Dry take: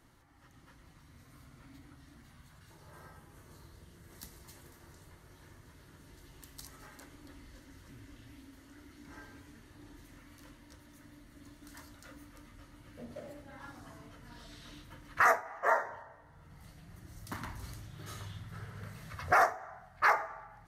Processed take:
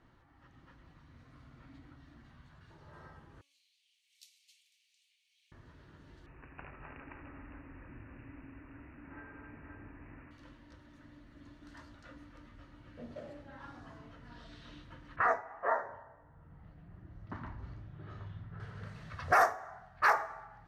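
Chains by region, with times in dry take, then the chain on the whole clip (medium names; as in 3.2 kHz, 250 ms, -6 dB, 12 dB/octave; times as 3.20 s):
3.41–5.52 s: Chebyshev high-pass 2.3 kHz, order 6 + treble shelf 9.4 kHz +11 dB
6.26–10.31 s: multi-tap echo 84/259/524 ms -8.5/-4/-4.5 dB + careless resampling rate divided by 8×, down none, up filtered
15.16–18.60 s: tape spacing loss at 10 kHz 31 dB + bands offset in time lows, highs 30 ms, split 4 kHz
whole clip: de-hum 281.1 Hz, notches 32; level-controlled noise filter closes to 2.9 kHz, open at -30 dBFS; band-stop 2.1 kHz, Q 18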